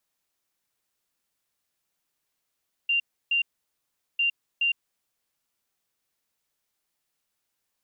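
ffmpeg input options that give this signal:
-f lavfi -i "aevalsrc='0.0944*sin(2*PI*2780*t)*clip(min(mod(mod(t,1.3),0.42),0.11-mod(mod(t,1.3),0.42))/0.005,0,1)*lt(mod(t,1.3),0.84)':d=2.6:s=44100"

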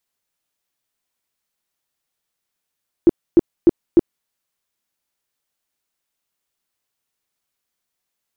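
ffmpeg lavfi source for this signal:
-f lavfi -i "aevalsrc='0.562*sin(2*PI*339*mod(t,0.3))*lt(mod(t,0.3),8/339)':d=1.2:s=44100"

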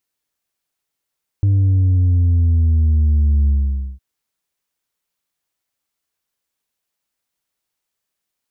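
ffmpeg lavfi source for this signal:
-f lavfi -i "aevalsrc='0.266*clip((2.56-t)/0.51,0,1)*tanh(1.41*sin(2*PI*100*2.56/log(65/100)*(exp(log(65/100)*t/2.56)-1)))/tanh(1.41)':d=2.56:s=44100"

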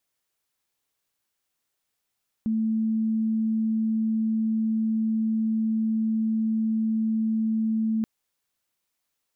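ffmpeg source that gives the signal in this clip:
-f lavfi -i "sine=f=221:d=5.58:r=44100,volume=-3.44dB"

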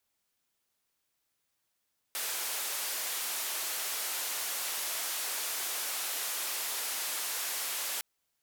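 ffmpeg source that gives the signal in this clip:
-f lavfi -i "anoisesrc=c=white:d=5.86:r=44100:seed=1,highpass=f=520,lowpass=f=16000,volume=-28.6dB"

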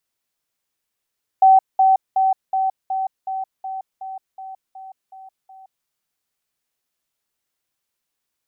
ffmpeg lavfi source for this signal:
-f lavfi -i "aevalsrc='pow(10,(-7.5-3*floor(t/0.37))/20)*sin(2*PI*765*t)*clip(min(mod(t,0.37),0.17-mod(t,0.37))/0.005,0,1)':d=4.44:s=44100"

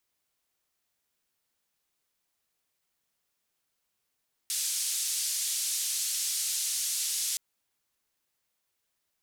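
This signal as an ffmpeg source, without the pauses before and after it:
-f lavfi -i "anoisesrc=c=white:d=2.87:r=44100:seed=1,highpass=f=4700,lowpass=f=9700,volume=-19.7dB"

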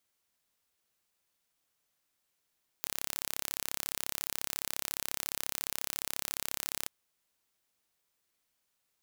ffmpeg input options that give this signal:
-f lavfi -i "aevalsrc='0.447*eq(mod(n,1286),0)':d=4.04:s=44100"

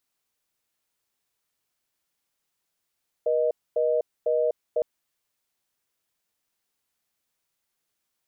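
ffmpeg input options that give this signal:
-f lavfi -i "aevalsrc='0.0708*(sin(2*PI*480*t)+sin(2*PI*620*t))*clip(min(mod(t,0.5),0.25-mod(t,0.5))/0.005,0,1)':d=1.56:s=44100"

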